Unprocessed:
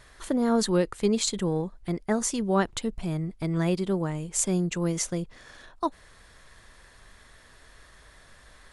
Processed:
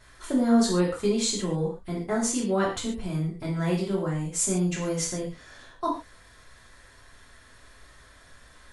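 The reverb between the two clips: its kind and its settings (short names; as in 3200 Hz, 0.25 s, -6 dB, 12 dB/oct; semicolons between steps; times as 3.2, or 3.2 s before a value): non-linear reverb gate 0.17 s falling, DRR -5.5 dB; gain -6 dB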